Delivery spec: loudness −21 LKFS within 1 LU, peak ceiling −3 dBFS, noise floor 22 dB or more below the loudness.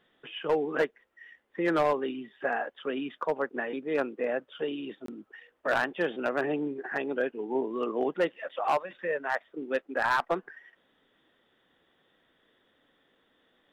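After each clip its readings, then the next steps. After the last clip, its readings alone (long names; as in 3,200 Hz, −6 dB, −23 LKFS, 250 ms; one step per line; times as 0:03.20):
share of clipped samples 0.4%; peaks flattened at −19.0 dBFS; number of dropouts 1; longest dropout 23 ms; integrated loudness −31.0 LKFS; sample peak −19.0 dBFS; target loudness −21.0 LKFS
→ clipped peaks rebuilt −19 dBFS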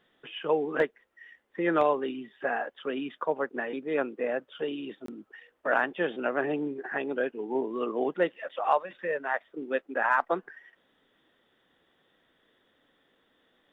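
share of clipped samples 0.0%; number of dropouts 1; longest dropout 23 ms
→ repair the gap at 0:05.06, 23 ms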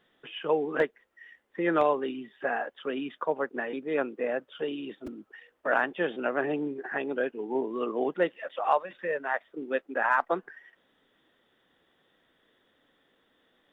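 number of dropouts 0; integrated loudness −30.0 LKFS; sample peak −10.5 dBFS; target loudness −21.0 LKFS
→ level +9 dB
brickwall limiter −3 dBFS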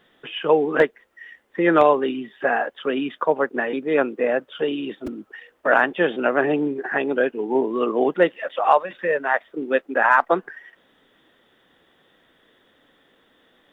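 integrated loudness −21.5 LKFS; sample peak −3.0 dBFS; background noise floor −61 dBFS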